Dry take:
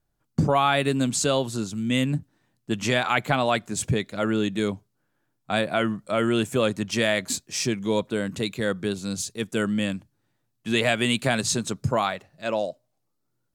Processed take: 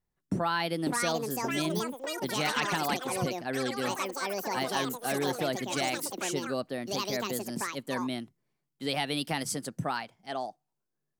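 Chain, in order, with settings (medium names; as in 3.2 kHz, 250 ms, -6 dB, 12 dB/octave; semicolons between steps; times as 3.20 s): tape speed +21%; ever faster or slower copies 642 ms, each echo +6 st, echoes 3; trim -8.5 dB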